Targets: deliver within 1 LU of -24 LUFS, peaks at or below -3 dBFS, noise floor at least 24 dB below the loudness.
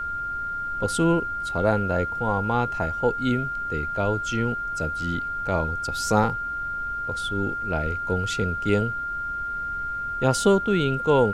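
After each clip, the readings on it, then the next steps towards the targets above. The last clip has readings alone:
steady tone 1.4 kHz; tone level -27 dBFS; noise floor -30 dBFS; noise floor target -49 dBFS; loudness -25.0 LUFS; peak level -5.5 dBFS; loudness target -24.0 LUFS
-> band-stop 1.4 kHz, Q 30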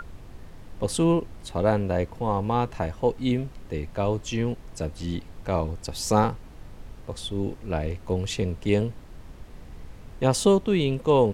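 steady tone not found; noise floor -45 dBFS; noise floor target -51 dBFS
-> noise print and reduce 6 dB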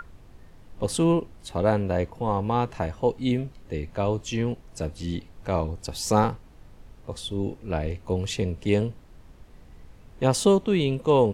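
noise floor -50 dBFS; noise floor target -51 dBFS
-> noise print and reduce 6 dB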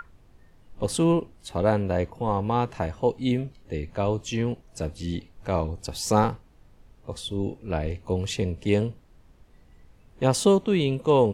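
noise floor -56 dBFS; loudness -26.5 LUFS; peak level -6.5 dBFS; loudness target -24.0 LUFS
-> trim +2.5 dB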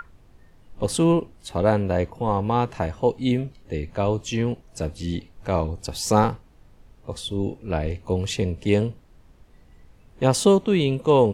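loudness -24.0 LUFS; peak level -4.0 dBFS; noise floor -53 dBFS

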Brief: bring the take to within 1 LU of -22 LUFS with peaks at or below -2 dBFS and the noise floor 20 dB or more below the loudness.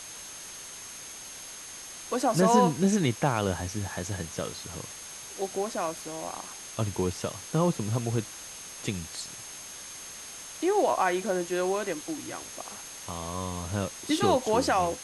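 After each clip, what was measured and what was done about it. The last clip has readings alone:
steady tone 6.4 kHz; tone level -44 dBFS; noise floor -43 dBFS; noise floor target -50 dBFS; loudness -30.0 LUFS; peak level -10.0 dBFS; loudness target -22.0 LUFS
-> band-stop 6.4 kHz, Q 30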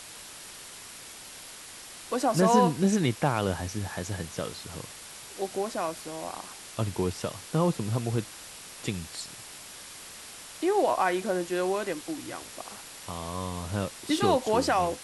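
steady tone not found; noise floor -45 dBFS; noise floor target -49 dBFS
-> noise reduction 6 dB, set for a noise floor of -45 dBFS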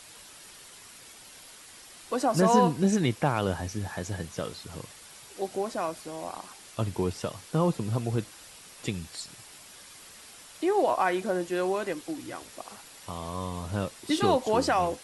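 noise floor -50 dBFS; loudness -29.0 LUFS; peak level -10.0 dBFS; loudness target -22.0 LUFS
-> trim +7 dB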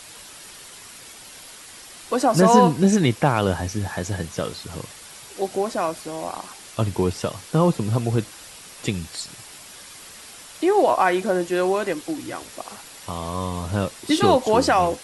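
loudness -22.0 LUFS; peak level -3.0 dBFS; noise floor -43 dBFS

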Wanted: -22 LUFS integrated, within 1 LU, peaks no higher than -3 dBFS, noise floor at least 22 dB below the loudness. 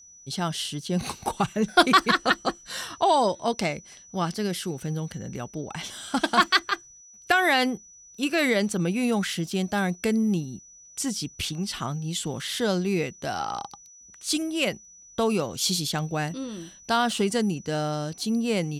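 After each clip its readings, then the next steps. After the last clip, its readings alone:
steady tone 5.9 kHz; tone level -48 dBFS; loudness -26.0 LUFS; peak level -5.5 dBFS; loudness target -22.0 LUFS
-> band-stop 5.9 kHz, Q 30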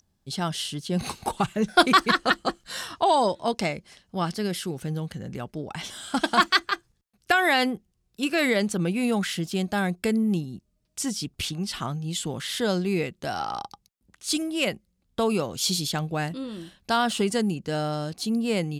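steady tone not found; loudness -26.0 LUFS; peak level -5.5 dBFS; loudness target -22.0 LUFS
-> trim +4 dB; peak limiter -3 dBFS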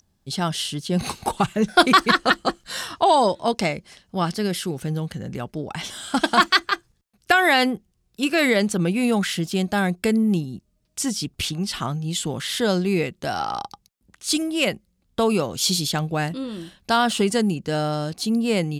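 loudness -22.0 LUFS; peak level -3.0 dBFS; noise floor -68 dBFS

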